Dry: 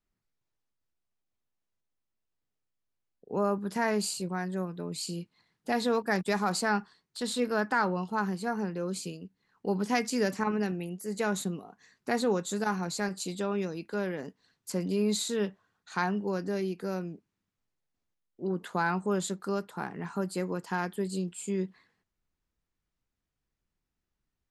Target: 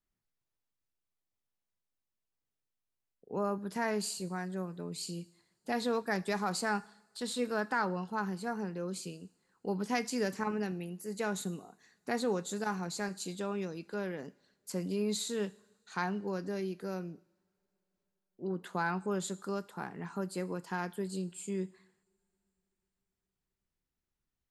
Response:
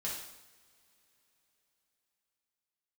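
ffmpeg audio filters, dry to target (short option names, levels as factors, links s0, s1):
-filter_complex "[0:a]asplit=2[s0][s1];[1:a]atrim=start_sample=2205,highshelf=f=4600:g=10[s2];[s1][s2]afir=irnorm=-1:irlink=0,volume=0.0891[s3];[s0][s3]amix=inputs=2:normalize=0,volume=0.562"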